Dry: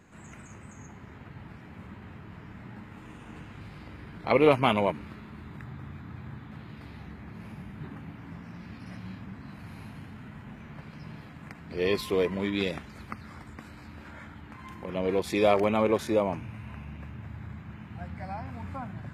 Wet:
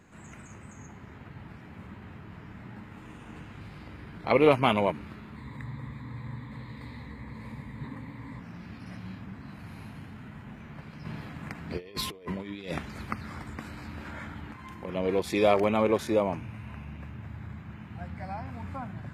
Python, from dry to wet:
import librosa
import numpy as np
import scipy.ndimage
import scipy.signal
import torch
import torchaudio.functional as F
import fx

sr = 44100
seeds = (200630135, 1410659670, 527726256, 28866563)

y = fx.ripple_eq(x, sr, per_octave=1.0, db=12, at=(5.36, 8.4))
y = fx.over_compress(y, sr, threshold_db=-34.0, ratio=-0.5, at=(11.05, 14.52))